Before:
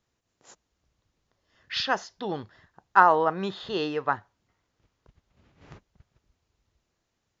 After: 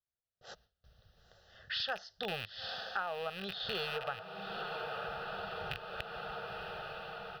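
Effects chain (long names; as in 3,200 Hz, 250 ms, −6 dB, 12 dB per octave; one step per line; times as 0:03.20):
loose part that buzzes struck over −46 dBFS, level −19 dBFS
feedback delay with all-pass diffusion 943 ms, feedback 55%, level −15 dB
automatic gain control gain up to 13 dB
noise gate with hold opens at −53 dBFS
phaser with its sweep stopped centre 1,500 Hz, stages 8
downward compressor 4 to 1, threshold −37 dBFS, peak gain reduction 20 dB
0:01.80–0:03.97: high-shelf EQ 4,100 Hz +7 dB
level −1.5 dB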